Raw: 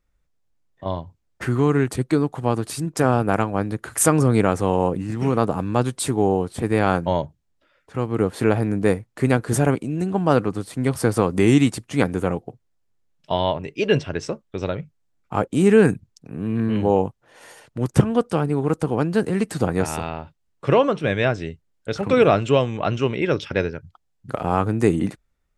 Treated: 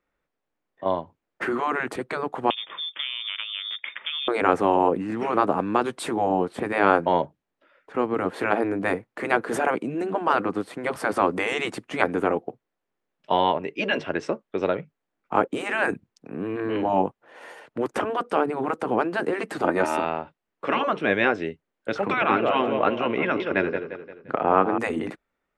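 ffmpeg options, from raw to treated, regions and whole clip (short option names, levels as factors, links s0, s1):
-filter_complex "[0:a]asettb=1/sr,asplit=3[s0][s1][s2];[s0]atrim=end=2.504[s3];[s1]atrim=start=2.5:end=4.28,asetpts=PTS-STARTPTS,afade=t=in:d=0.004:c=qsin,afade=t=out:st=1.776:d=0.004:c=qsin,acompressor=threshold=0.0631:ratio=8:attack=3.2:release=140:knee=1:detection=peak,lowpass=f=3100:t=q:w=0.5098,lowpass=f=3100:t=q:w=0.6013,lowpass=f=3100:t=q:w=0.9,lowpass=f=3100:t=q:w=2.563,afreqshift=-3700,asuperstop=centerf=750:order=4:qfactor=7.8[s4];[s2]atrim=start=4.276[s5];[s3][s4]acrossfade=d=0.004:c1=hsin:c2=qsin[s6];[s6][s5]acrossfade=d=0.004:c1=qsin:c2=hsin,asettb=1/sr,asplit=3[s7][s8][s9];[s7]atrim=end=19.644[s10];[s8]atrim=start=19.64:end=20.05,asetpts=PTS-STARTPTS,afade=t=in:d=0.004:c=qsin,afade=t=out:st=0.406:d=0.004:c=qsin,highpass=100,aecho=1:1:3.3:0.59,atrim=end_sample=18081[s11];[s9]atrim=start=20.046[s12];[s10][s11]acrossfade=d=0.004:c1=hsin:c2=qsin[s13];[s13][s12]acrossfade=d=0.004:c1=qsin:c2=hsin,asettb=1/sr,asplit=3[s14][s15][s16];[s14]atrim=end=22.134[s17];[s15]atrim=start=22.13:end=24.78,asetpts=PTS-STARTPTS,afade=t=in:d=0.004:c=qsin,afade=t=out:st=2.646:d=0.004:c=qsin,lowpass=3400,aecho=1:1:174|348|522|696|870:0.282|0.127|0.0571|0.0257|0.0116,atrim=end_sample=116865[s18];[s16]atrim=start=24.776[s19];[s17][s18]acrossfade=d=0.004:c1=hsin:c2=qsin[s20];[s20][s19]acrossfade=d=0.004:c1=qsin:c2=hsin,afftfilt=real='re*lt(hypot(re,im),0.562)':imag='im*lt(hypot(re,im),0.562)':win_size=1024:overlap=0.75,acrossover=split=220 3000:gain=0.0891 1 0.178[s21][s22][s23];[s21][s22][s23]amix=inputs=3:normalize=0,volume=1.58"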